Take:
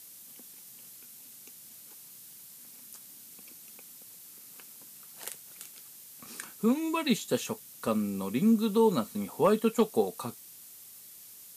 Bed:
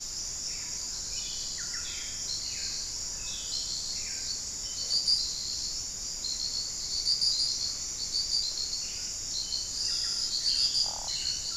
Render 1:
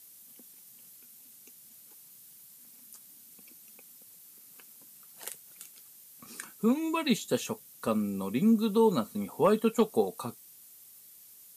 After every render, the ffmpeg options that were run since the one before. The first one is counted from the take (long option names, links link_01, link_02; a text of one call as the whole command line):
ffmpeg -i in.wav -af "afftdn=noise_reduction=6:noise_floor=-51" out.wav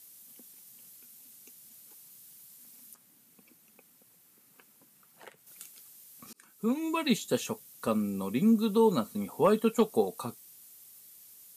ffmpeg -i in.wav -filter_complex "[0:a]asettb=1/sr,asplit=3[link_01][link_02][link_03];[link_01]atrim=end=2.944[link_04];[link_02]atrim=start=2.94:end=5.47,asetpts=PTS-STARTPTS,afade=type=in:duration=0.004:curve=qsin,afade=type=out:start_time=2.526:duration=0.004:curve=qsin,acrossover=split=2500[link_05][link_06];[link_06]acompressor=threshold=-59dB:ratio=4:attack=1:release=60[link_07];[link_05][link_07]amix=inputs=2:normalize=0[link_08];[link_03]atrim=start=5.466[link_09];[link_04][link_08]acrossfade=duration=0.004:curve1=hsin:curve2=qsin[link_10];[link_10][link_09]acrossfade=duration=0.004:curve1=qsin:curve2=hsin,asplit=2[link_11][link_12];[link_11]atrim=end=6.33,asetpts=PTS-STARTPTS,afade=type=out:start_time=6.326:duration=0.004:curve=hsin[link_13];[link_12]atrim=start=6.33,asetpts=PTS-STARTPTS,afade=type=in:duration=0.76:curve=qsin[link_14];[link_13][link_14]concat=n=2:v=0:a=1" out.wav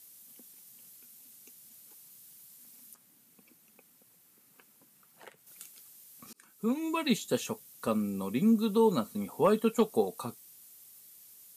ffmpeg -i in.wav -af "volume=-1dB" out.wav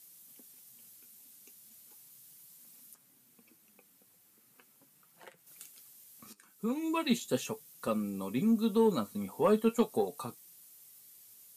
ffmpeg -i in.wav -filter_complex "[0:a]flanger=delay=5.5:depth=5.2:regen=57:speed=0.38:shape=triangular,asplit=2[link_01][link_02];[link_02]asoftclip=type=tanh:threshold=-26dB,volume=-10dB[link_03];[link_01][link_03]amix=inputs=2:normalize=0" out.wav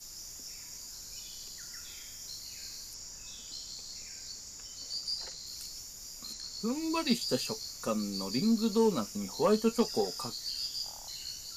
ffmpeg -i in.wav -i bed.wav -filter_complex "[1:a]volume=-10dB[link_01];[0:a][link_01]amix=inputs=2:normalize=0" out.wav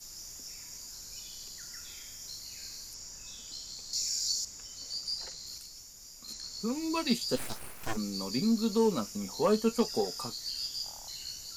ffmpeg -i in.wav -filter_complex "[0:a]asettb=1/sr,asplit=3[link_01][link_02][link_03];[link_01]atrim=end=3.934[link_04];[link_02]atrim=start=3.93:end=4.45,asetpts=PTS-STARTPTS,afade=type=in:duration=0.004:curve=qsin,afade=type=out:start_time=0.516:duration=0.004:curve=qsin,highshelf=frequency=3100:width_type=q:width=1.5:gain=10.5[link_05];[link_03]atrim=start=4.446[link_06];[link_04][link_05]acrossfade=duration=0.004:curve1=hsin:curve2=qsin[link_07];[link_07][link_06]acrossfade=duration=0.004:curve1=qsin:curve2=hsin,asplit=3[link_08][link_09][link_10];[link_08]afade=type=out:start_time=7.35:duration=0.02[link_11];[link_09]aeval=exprs='abs(val(0))':channel_layout=same,afade=type=in:start_time=7.35:duration=0.02,afade=type=out:start_time=7.96:duration=0.02[link_12];[link_10]afade=type=in:start_time=7.96:duration=0.02[link_13];[link_11][link_12][link_13]amix=inputs=3:normalize=0,asplit=3[link_14][link_15][link_16];[link_14]atrim=end=5.582[link_17];[link_15]atrim=start=5.578:end=6.282,asetpts=PTS-STARTPTS,volume=-4.5dB[link_18];[link_16]atrim=start=6.278[link_19];[link_17][link_18]acrossfade=duration=0.004:curve1=hsin:curve2=hsin[link_20];[link_20][link_19]acrossfade=duration=0.004:curve1=hsin:curve2=hsin" out.wav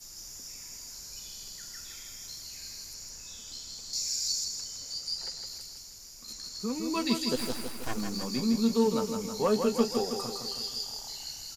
ffmpeg -i in.wav -af "aecho=1:1:160|320|480|640|800|960|1120:0.501|0.286|0.163|0.0928|0.0529|0.0302|0.0172" out.wav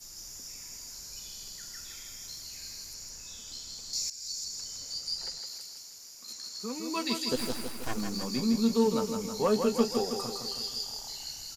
ffmpeg -i in.wav -filter_complex "[0:a]asettb=1/sr,asplit=3[link_01][link_02][link_03];[link_01]atrim=end=2.314[link_04];[link_02]atrim=start=2.31:end=2.92,asetpts=PTS-STARTPTS,afade=type=in:duration=0.004:curve=qsin,afade=type=out:start_time=0.606:duration=0.004:curve=qsin,acrusher=bits=9:mode=log:mix=0:aa=0.000001[link_05];[link_03]atrim=start=2.916[link_06];[link_04][link_05]acrossfade=duration=0.004:curve1=hsin:curve2=qsin[link_07];[link_07][link_06]acrossfade=duration=0.004:curve1=qsin:curve2=hsin,asettb=1/sr,asplit=3[link_08][link_09][link_10];[link_08]atrim=end=5.384[link_11];[link_09]atrim=start=5.38:end=7.32,asetpts=PTS-STARTPTS,afade=type=in:duration=0.004:curve=qsin,afade=type=out:start_time=1.936:duration=0.004:curve=qsin,highpass=frequency=380:poles=1[link_12];[link_10]atrim=start=7.316[link_13];[link_11][link_12]acrossfade=duration=0.004:curve1=hsin:curve2=qsin[link_14];[link_14][link_13]acrossfade=duration=0.004:curve1=qsin:curve2=hsin,asplit=2[link_15][link_16];[link_15]atrim=end=4.1,asetpts=PTS-STARTPTS,afade=type=out:start_time=4.096:duration=0.004:curve=hsin:silence=0.177828[link_17];[link_16]atrim=start=4.1,asetpts=PTS-STARTPTS,afade=type=in:duration=0.62:silence=0.177828[link_18];[link_17][link_18]concat=n=2:v=0:a=1" out.wav